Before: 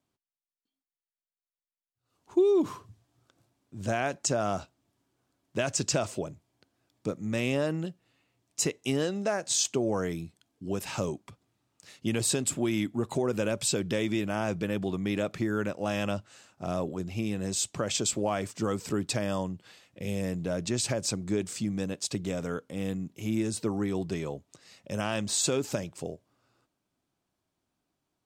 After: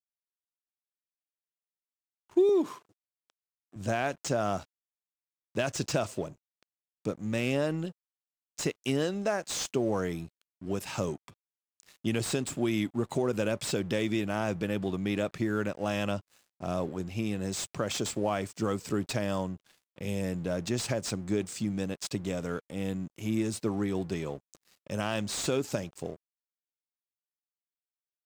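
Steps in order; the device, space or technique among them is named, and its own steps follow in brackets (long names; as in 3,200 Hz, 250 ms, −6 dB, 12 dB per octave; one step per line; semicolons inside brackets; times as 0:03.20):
early transistor amplifier (dead-zone distortion −52 dBFS; slew-rate limiting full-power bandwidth 140 Hz)
0:02.49–0:03.76: high-pass filter 260 Hz 12 dB per octave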